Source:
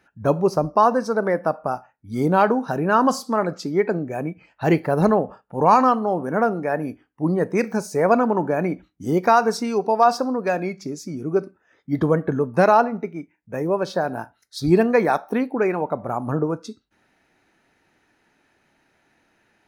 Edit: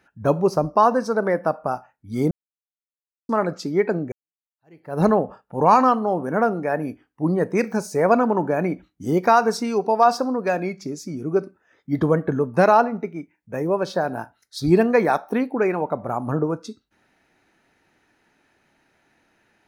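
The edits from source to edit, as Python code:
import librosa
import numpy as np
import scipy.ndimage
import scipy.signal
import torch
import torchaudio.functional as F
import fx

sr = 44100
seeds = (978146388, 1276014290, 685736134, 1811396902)

y = fx.edit(x, sr, fx.silence(start_s=2.31, length_s=0.98),
    fx.fade_in_span(start_s=4.12, length_s=0.89, curve='exp'), tone=tone)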